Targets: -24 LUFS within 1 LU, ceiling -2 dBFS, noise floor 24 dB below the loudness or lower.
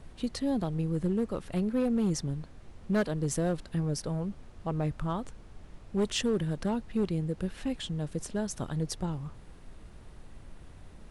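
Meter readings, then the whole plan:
clipped samples 1.0%; clipping level -22.0 dBFS; noise floor -51 dBFS; noise floor target -56 dBFS; loudness -32.0 LUFS; peak level -22.0 dBFS; loudness target -24.0 LUFS
-> clip repair -22 dBFS; noise print and reduce 6 dB; trim +8 dB

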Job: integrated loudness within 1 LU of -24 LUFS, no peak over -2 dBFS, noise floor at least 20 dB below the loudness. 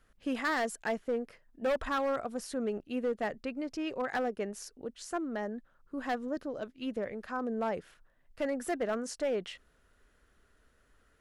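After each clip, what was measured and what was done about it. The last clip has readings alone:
clipped samples 1.5%; clipping level -26.0 dBFS; loudness -35.0 LUFS; peak level -26.0 dBFS; loudness target -24.0 LUFS
-> clip repair -26 dBFS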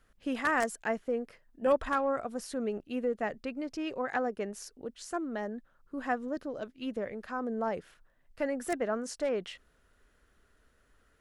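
clipped samples 0.0%; loudness -34.0 LUFS; peak level -17.0 dBFS; loudness target -24.0 LUFS
-> trim +10 dB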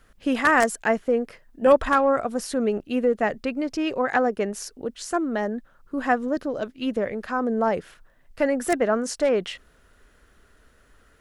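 loudness -24.0 LUFS; peak level -7.0 dBFS; noise floor -59 dBFS

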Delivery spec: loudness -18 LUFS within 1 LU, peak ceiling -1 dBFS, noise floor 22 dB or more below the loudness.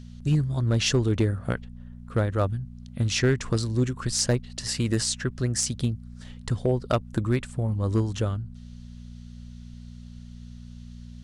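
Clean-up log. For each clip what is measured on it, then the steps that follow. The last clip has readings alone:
clipped samples 0.3%; clipping level -14.5 dBFS; hum 60 Hz; highest harmonic 240 Hz; hum level -40 dBFS; loudness -26.5 LUFS; peak level -14.5 dBFS; loudness target -18.0 LUFS
-> clip repair -14.5 dBFS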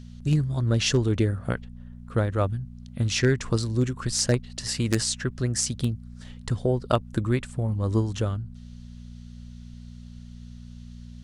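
clipped samples 0.0%; hum 60 Hz; highest harmonic 240 Hz; hum level -40 dBFS
-> de-hum 60 Hz, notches 4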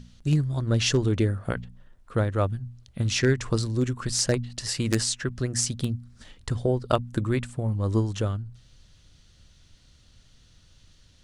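hum not found; loudness -26.5 LUFS; peak level -5.5 dBFS; loudness target -18.0 LUFS
-> trim +8.5 dB; peak limiter -1 dBFS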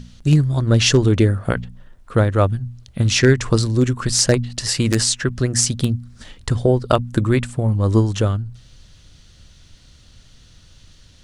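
loudness -18.0 LUFS; peak level -1.0 dBFS; noise floor -49 dBFS

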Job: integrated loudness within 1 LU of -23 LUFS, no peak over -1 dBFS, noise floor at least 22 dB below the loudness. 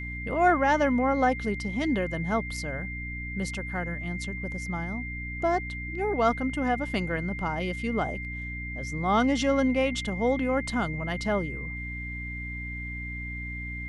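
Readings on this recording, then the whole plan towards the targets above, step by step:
hum 60 Hz; highest harmonic 300 Hz; hum level -35 dBFS; steady tone 2.1 kHz; tone level -36 dBFS; loudness -28.5 LUFS; peak level -10.0 dBFS; loudness target -23.0 LUFS
-> hum notches 60/120/180/240/300 Hz; band-stop 2.1 kHz, Q 30; trim +5.5 dB

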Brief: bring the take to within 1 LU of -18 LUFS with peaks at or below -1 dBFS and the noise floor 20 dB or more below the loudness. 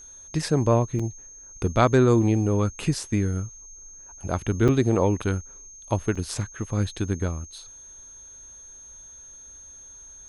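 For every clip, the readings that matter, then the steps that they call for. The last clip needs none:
dropouts 3; longest dropout 5.6 ms; steady tone 6.4 kHz; tone level -43 dBFS; loudness -24.5 LUFS; peak level -5.0 dBFS; loudness target -18.0 LUFS
-> interpolate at 0.99/4.68/6.15 s, 5.6 ms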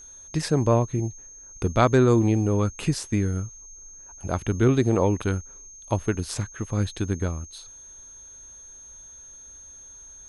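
dropouts 0; steady tone 6.4 kHz; tone level -43 dBFS
-> band-stop 6.4 kHz, Q 30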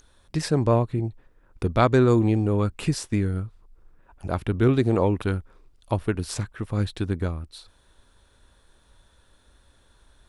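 steady tone not found; loudness -24.5 LUFS; peak level -4.5 dBFS; loudness target -18.0 LUFS
-> trim +6.5 dB; peak limiter -1 dBFS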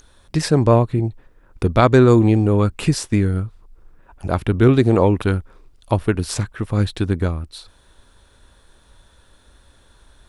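loudness -18.0 LUFS; peak level -1.0 dBFS; noise floor -54 dBFS

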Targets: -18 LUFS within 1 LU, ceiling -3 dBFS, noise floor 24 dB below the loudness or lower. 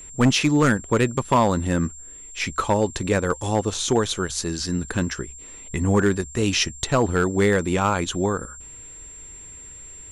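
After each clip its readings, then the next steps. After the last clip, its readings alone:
clipped samples 0.5%; clipping level -11.0 dBFS; steady tone 7.4 kHz; tone level -39 dBFS; loudness -22.5 LUFS; peak level -11.0 dBFS; loudness target -18.0 LUFS
-> clip repair -11 dBFS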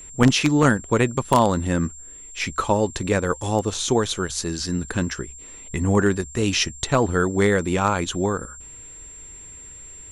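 clipped samples 0.0%; steady tone 7.4 kHz; tone level -39 dBFS
-> band-stop 7.4 kHz, Q 30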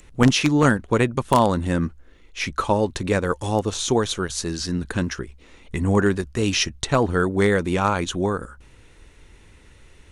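steady tone not found; loudness -22.0 LUFS; peak level -2.0 dBFS; loudness target -18.0 LUFS
-> trim +4 dB; peak limiter -3 dBFS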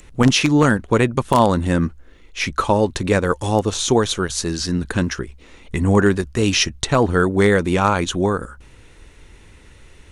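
loudness -18.5 LUFS; peak level -3.0 dBFS; noise floor -47 dBFS

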